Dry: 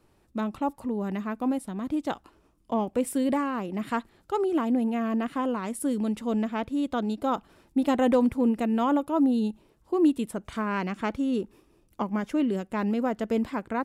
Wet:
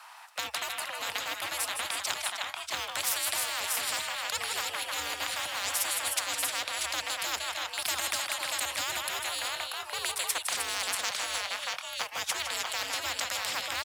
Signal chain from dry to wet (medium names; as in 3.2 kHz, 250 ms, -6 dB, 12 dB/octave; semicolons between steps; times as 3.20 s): steep high-pass 710 Hz 48 dB/octave; treble shelf 6.1 kHz -6.5 dB; in parallel at -5.5 dB: crossover distortion -52 dBFS; on the sum: frequency shift +69 Hz; on a send: multi-tap echo 160/309/637/662 ms -11.5/-12/-8/-18 dB; on the sum: spectrum-flattening compressor 10:1; trim +2.5 dB